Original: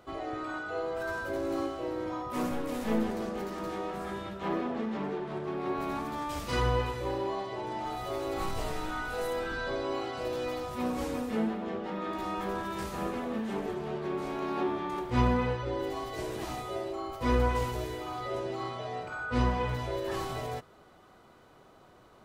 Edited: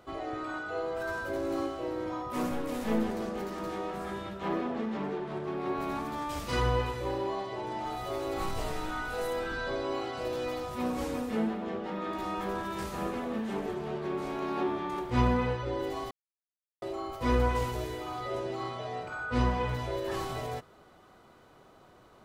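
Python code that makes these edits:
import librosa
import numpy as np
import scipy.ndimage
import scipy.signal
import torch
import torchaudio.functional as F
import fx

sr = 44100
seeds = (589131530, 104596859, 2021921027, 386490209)

y = fx.edit(x, sr, fx.silence(start_s=16.11, length_s=0.71), tone=tone)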